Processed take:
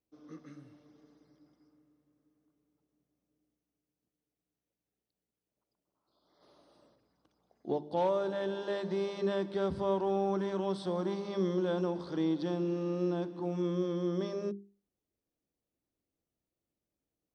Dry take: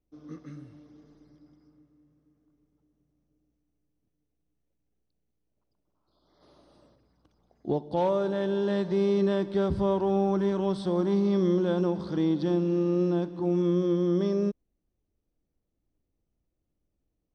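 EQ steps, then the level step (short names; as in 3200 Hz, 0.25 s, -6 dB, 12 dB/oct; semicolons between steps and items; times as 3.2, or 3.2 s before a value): HPF 230 Hz 6 dB/oct; notches 50/100/150/200/250/300/350/400 Hz; -3.0 dB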